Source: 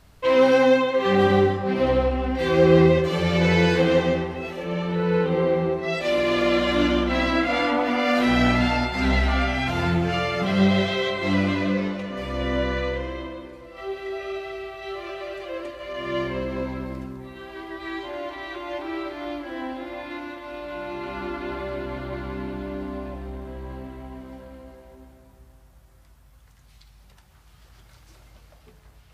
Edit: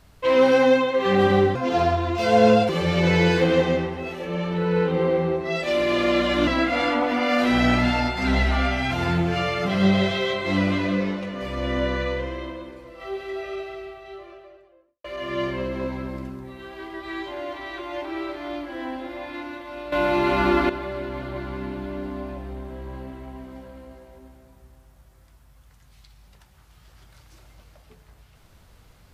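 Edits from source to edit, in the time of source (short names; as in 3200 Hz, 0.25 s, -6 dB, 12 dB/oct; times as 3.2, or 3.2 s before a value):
1.55–3.07 speed 133%
6.85–7.24 cut
14.05–15.81 studio fade out
20.69–21.46 gain +11.5 dB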